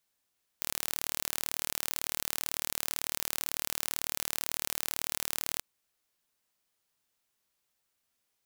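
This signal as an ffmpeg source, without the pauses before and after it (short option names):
-f lavfi -i "aevalsrc='0.562*eq(mod(n,1161),0)':d=4.98:s=44100"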